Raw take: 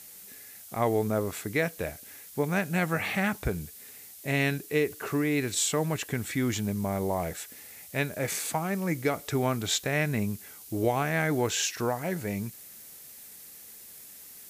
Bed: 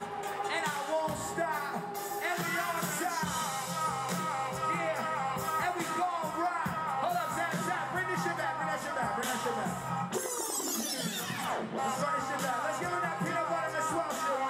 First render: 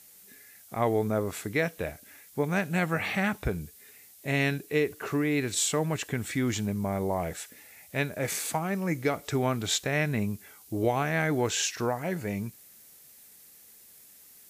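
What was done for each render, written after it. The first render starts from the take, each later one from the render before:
noise reduction from a noise print 6 dB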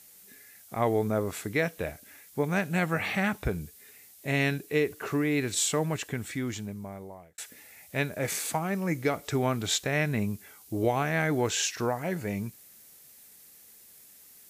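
0:05.79–0:07.38: fade out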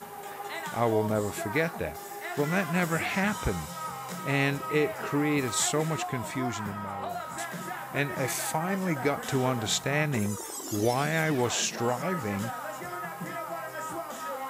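mix in bed −4 dB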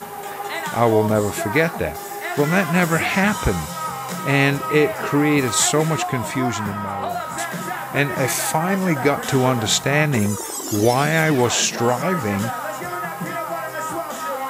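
level +9.5 dB

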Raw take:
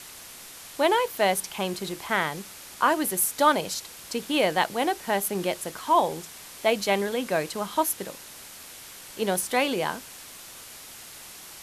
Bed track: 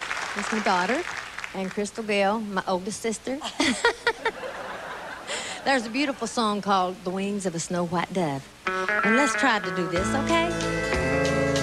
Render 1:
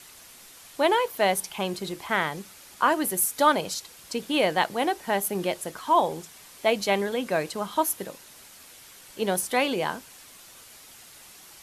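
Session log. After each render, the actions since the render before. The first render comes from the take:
broadband denoise 6 dB, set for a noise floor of −44 dBFS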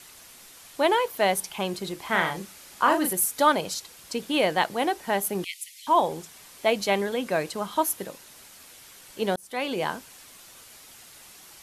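0:02.01–0:03.13: double-tracking delay 36 ms −5 dB
0:05.44–0:05.87: Butterworth high-pass 2,000 Hz 96 dB per octave
0:09.36–0:09.83: fade in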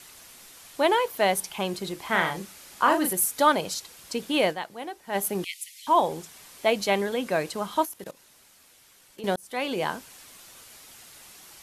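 0:04.50–0:05.16: duck −11 dB, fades 0.32 s exponential
0:07.85–0:09.24: output level in coarse steps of 19 dB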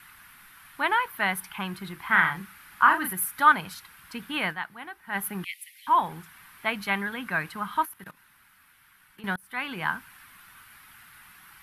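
drawn EQ curve 180 Hz 0 dB, 550 Hz −18 dB, 900 Hz −1 dB, 1,500 Hz +8 dB, 7,100 Hz −18 dB, 11,000 Hz −3 dB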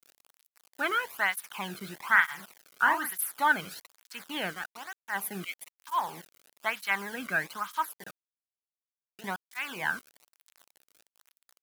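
bit reduction 7 bits
through-zero flanger with one copy inverted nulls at 1.1 Hz, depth 1.2 ms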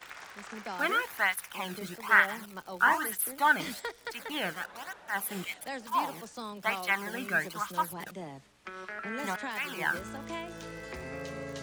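mix in bed track −16.5 dB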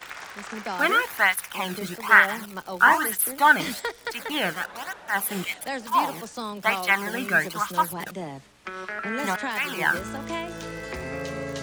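level +7.5 dB
brickwall limiter −2 dBFS, peak gain reduction 2 dB

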